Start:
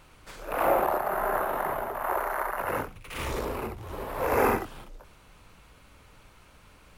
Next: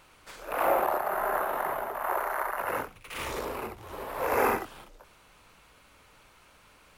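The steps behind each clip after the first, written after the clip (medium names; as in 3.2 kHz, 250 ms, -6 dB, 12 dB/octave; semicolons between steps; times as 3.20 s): bass shelf 260 Hz -10 dB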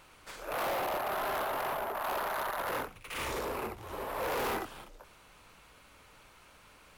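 overload inside the chain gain 31 dB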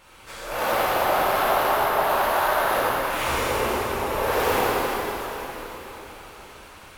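plate-style reverb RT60 4.2 s, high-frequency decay 0.95×, DRR -10 dB; trim +2 dB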